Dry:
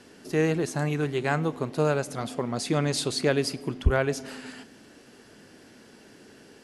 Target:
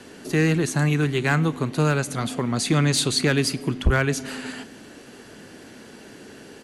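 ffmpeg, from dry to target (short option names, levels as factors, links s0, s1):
-filter_complex "[0:a]acrossover=split=350|1000[s0][s1][s2];[s1]acompressor=threshold=0.00562:ratio=6[s3];[s0][s3][s2]amix=inputs=3:normalize=0,aresample=32000,aresample=44100,asoftclip=type=hard:threshold=0.1,bandreject=f=5200:w=8.9,volume=2.51"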